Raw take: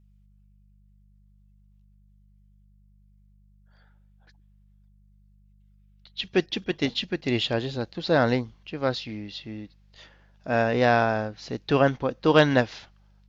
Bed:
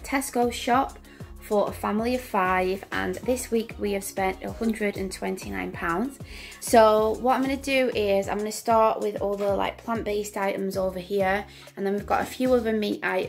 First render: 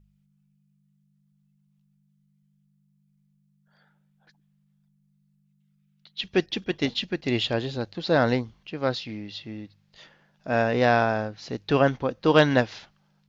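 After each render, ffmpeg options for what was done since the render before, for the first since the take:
-af "bandreject=f=50:t=h:w=4,bandreject=f=100:t=h:w=4"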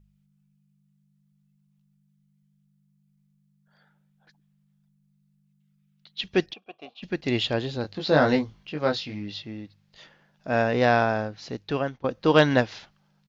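-filter_complex "[0:a]asplit=3[s0][s1][s2];[s0]afade=t=out:st=6.52:d=0.02[s3];[s1]asplit=3[s4][s5][s6];[s4]bandpass=f=730:t=q:w=8,volume=1[s7];[s5]bandpass=f=1090:t=q:w=8,volume=0.501[s8];[s6]bandpass=f=2440:t=q:w=8,volume=0.355[s9];[s7][s8][s9]amix=inputs=3:normalize=0,afade=t=in:st=6.52:d=0.02,afade=t=out:st=7.02:d=0.02[s10];[s2]afade=t=in:st=7.02:d=0.02[s11];[s3][s10][s11]amix=inputs=3:normalize=0,asplit=3[s12][s13][s14];[s12]afade=t=out:st=7.83:d=0.02[s15];[s13]asplit=2[s16][s17];[s17]adelay=20,volume=0.668[s18];[s16][s18]amix=inputs=2:normalize=0,afade=t=in:st=7.83:d=0.02,afade=t=out:st=9.41:d=0.02[s19];[s14]afade=t=in:st=9.41:d=0.02[s20];[s15][s19][s20]amix=inputs=3:normalize=0,asplit=2[s21][s22];[s21]atrim=end=12.04,asetpts=PTS-STARTPTS,afade=t=out:st=11.41:d=0.63:silence=0.125893[s23];[s22]atrim=start=12.04,asetpts=PTS-STARTPTS,afade=t=in:d=0.004:c=hsin:silence=0.125893[s24];[s23][s24]concat=n=2:v=0:a=1"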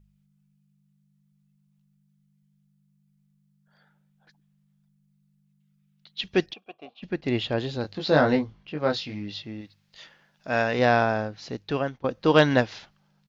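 -filter_complex "[0:a]asettb=1/sr,asplit=3[s0][s1][s2];[s0]atrim=end=6.734[s3];[s1]atrim=start=6.73:end=7.58,asetpts=PTS-STARTPTS,afade=t=in:d=0.004:c=qsin,afade=t=out:st=0.846:d=0.004:c=qsin,highshelf=f=3500:g=-10[s4];[s2]atrim=start=7.576[s5];[s3][s4]acrossfade=d=0.004:c1=hsin:c2=qsin[s6];[s6][s5]acrossfade=d=0.004:c1=qsin:c2=hsin,asettb=1/sr,asplit=3[s7][s8][s9];[s7]atrim=end=8.214[s10];[s8]atrim=start=8.21:end=8.9,asetpts=PTS-STARTPTS,afade=t=in:d=0.004:c=qsin,afade=t=out:st=0.686:d=0.004:c=qsin,highshelf=f=4300:g=-11[s11];[s9]atrim=start=8.896[s12];[s10][s11]acrossfade=d=0.004:c1=hsin:c2=qsin[s13];[s13][s12]acrossfade=d=0.004:c1=qsin:c2=hsin,asettb=1/sr,asplit=3[s14][s15][s16];[s14]atrim=end=9.614[s17];[s15]atrim=start=9.61:end=10.79,asetpts=PTS-STARTPTS,afade=t=in:d=0.004:c=qsin,afade=t=out:st=1.176:d=0.004:c=qsin,tiltshelf=f=970:g=-4[s18];[s16]atrim=start=10.786[s19];[s17][s18]acrossfade=d=0.004:c1=hsin:c2=qsin[s20];[s20][s19]acrossfade=d=0.004:c1=qsin:c2=hsin"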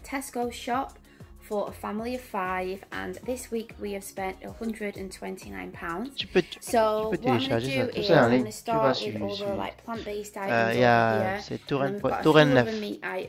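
-filter_complex "[1:a]volume=0.473[s0];[0:a][s0]amix=inputs=2:normalize=0"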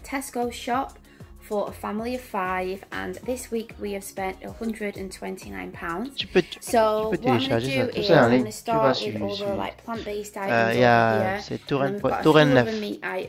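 -af "volume=1.41,alimiter=limit=0.708:level=0:latency=1"

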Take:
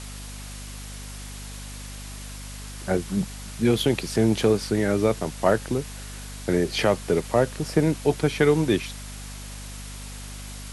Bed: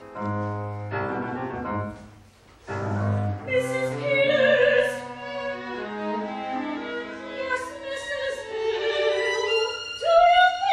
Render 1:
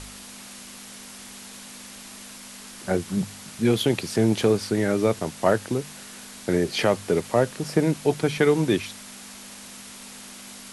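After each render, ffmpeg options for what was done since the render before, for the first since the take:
-af "bandreject=f=50:t=h:w=4,bandreject=f=100:t=h:w=4,bandreject=f=150:t=h:w=4"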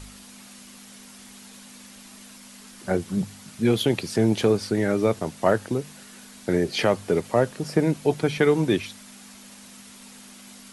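-af "afftdn=nr=6:nf=-42"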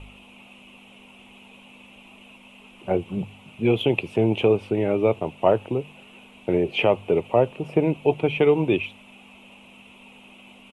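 -af "firequalizer=gain_entry='entry(130,0);entry(210,-4);entry(360,2);entry(920,3);entry(1700,-15);entry(2600,11);entry(4500,-25);entry(7900,-19)':delay=0.05:min_phase=1"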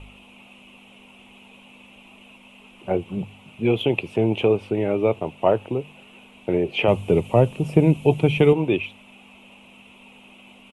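-filter_complex "[0:a]asettb=1/sr,asplit=3[s0][s1][s2];[s0]atrim=end=6.884[s3];[s1]atrim=start=6.88:end=8.53,asetpts=PTS-STARTPTS,afade=t=in:d=0.004:c=qsin,afade=t=out:st=1.646:d=0.004:c=qsin,bass=f=250:g=11,treble=f=4000:g=12[s4];[s2]atrim=start=8.526[s5];[s3][s4]acrossfade=d=0.004:c1=hsin:c2=qsin[s6];[s6][s5]acrossfade=d=0.004:c1=qsin:c2=hsin"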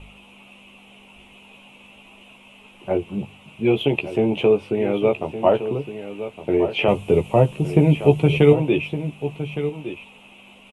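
-filter_complex "[0:a]asplit=2[s0][s1];[s1]adelay=14,volume=0.531[s2];[s0][s2]amix=inputs=2:normalize=0,asplit=2[s3][s4];[s4]aecho=0:1:1163:0.266[s5];[s3][s5]amix=inputs=2:normalize=0"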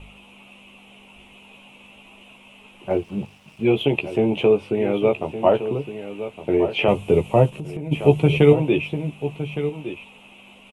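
-filter_complex "[0:a]asettb=1/sr,asplit=3[s0][s1][s2];[s0]atrim=end=2.904[s3];[s1]atrim=start=2.9:end=3.64,asetpts=PTS-STARTPTS,afade=t=in:d=0.004:c=qsin,afade=t=out:st=0.736:d=0.004:c=qsin,aeval=exprs='sgn(val(0))*max(abs(val(0))-0.00237,0)':c=same[s4];[s2]atrim=start=3.636[s5];[s3][s4]acrossfade=d=0.004:c1=hsin:c2=qsin[s6];[s6][s5]acrossfade=d=0.004:c1=qsin:c2=hsin,asplit=3[s7][s8][s9];[s7]afade=t=out:st=7.49:d=0.02[s10];[s8]acompressor=threshold=0.0398:ratio=6:attack=3.2:release=140:knee=1:detection=peak,afade=t=in:st=7.49:d=0.02,afade=t=out:st=7.91:d=0.02[s11];[s9]afade=t=in:st=7.91:d=0.02[s12];[s10][s11][s12]amix=inputs=3:normalize=0"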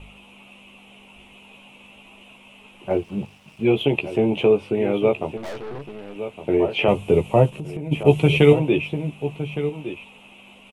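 -filter_complex "[0:a]asettb=1/sr,asplit=3[s0][s1][s2];[s0]atrim=end=5.374[s3];[s1]atrim=start=5.37:end=6.16,asetpts=PTS-STARTPTS,afade=t=in:d=0.004:c=qsin,afade=t=out:st=0.786:d=0.004:c=qsin,aeval=exprs='(tanh(35.5*val(0)+0.65)-tanh(0.65))/35.5':c=same[s4];[s2]atrim=start=6.156[s5];[s3][s4]acrossfade=d=0.004:c1=hsin:c2=qsin[s6];[s6][s5]acrossfade=d=0.004:c1=qsin:c2=hsin,asettb=1/sr,asplit=3[s7][s8][s9];[s7]atrim=end=8.034[s10];[s8]atrim=start=8.03:end=8.59,asetpts=PTS-STARTPTS,afade=t=in:d=0.004:c=qsin,afade=t=out:st=0.556:d=0.004:c=qsin,adynamicequalizer=threshold=0.02:dfrequency=1700:dqfactor=0.7:tfrequency=1700:tqfactor=0.7:attack=5:release=100:ratio=0.375:range=2.5:mode=boostabove:tftype=highshelf[s11];[s9]atrim=start=8.586[s12];[s10][s11]acrossfade=d=0.004:c1=hsin:c2=qsin[s13];[s13][s12]acrossfade=d=0.004:c1=qsin:c2=hsin"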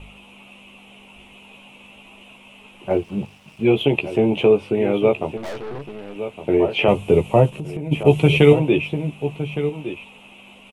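-af "volume=1.26,alimiter=limit=0.794:level=0:latency=1"

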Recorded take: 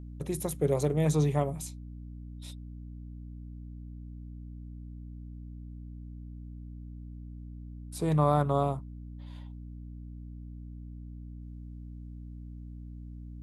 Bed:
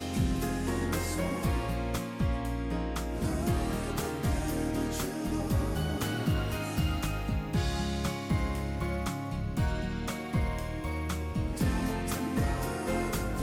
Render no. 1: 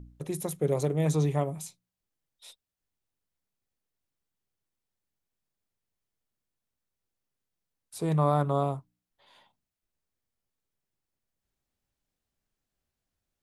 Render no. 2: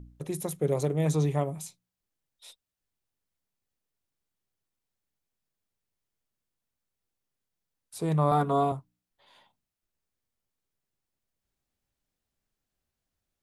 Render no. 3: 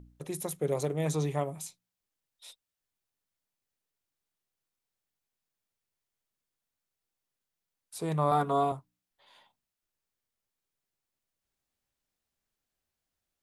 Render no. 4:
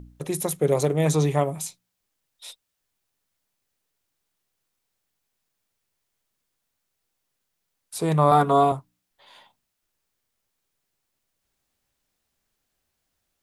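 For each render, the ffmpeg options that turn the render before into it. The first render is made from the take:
-af "bandreject=f=60:t=h:w=4,bandreject=f=120:t=h:w=4,bandreject=f=180:t=h:w=4,bandreject=f=240:t=h:w=4,bandreject=f=300:t=h:w=4"
-filter_complex "[0:a]asettb=1/sr,asplit=3[s0][s1][s2];[s0]atrim=end=8.314[s3];[s1]atrim=start=8.31:end=8.72,asetpts=PTS-STARTPTS,afade=t=in:d=0.004:c=qsin,afade=t=out:st=0.406:d=0.004:c=qsin,aecho=1:1:4.3:0.97,atrim=end_sample=18081[s4];[s2]atrim=start=8.716[s5];[s3][s4]acrossfade=d=0.004:c1=hsin:c2=qsin[s6];[s6][s5]acrossfade=d=0.004:c1=qsin:c2=hsin"
-af "lowshelf=f=360:g=-6.5"
-af "volume=2.82"

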